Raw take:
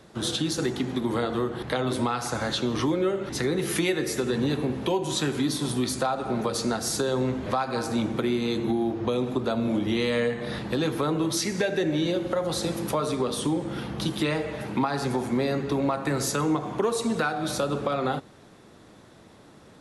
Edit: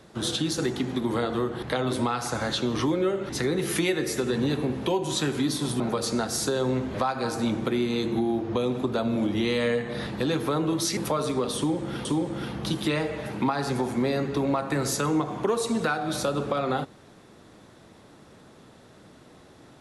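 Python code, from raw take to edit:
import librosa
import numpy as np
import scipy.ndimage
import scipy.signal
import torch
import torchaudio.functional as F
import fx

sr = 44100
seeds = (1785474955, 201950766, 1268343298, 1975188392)

y = fx.edit(x, sr, fx.cut(start_s=5.8, length_s=0.52),
    fx.cut(start_s=11.49, length_s=1.31),
    fx.repeat(start_s=13.4, length_s=0.48, count=2), tone=tone)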